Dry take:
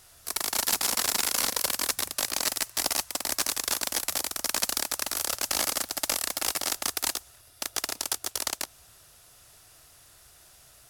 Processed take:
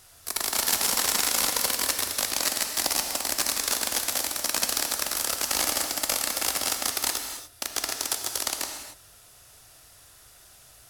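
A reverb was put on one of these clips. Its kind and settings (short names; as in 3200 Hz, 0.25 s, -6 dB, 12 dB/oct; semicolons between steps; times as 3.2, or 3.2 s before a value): non-linear reverb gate 0.31 s flat, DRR 4.5 dB; gain +1 dB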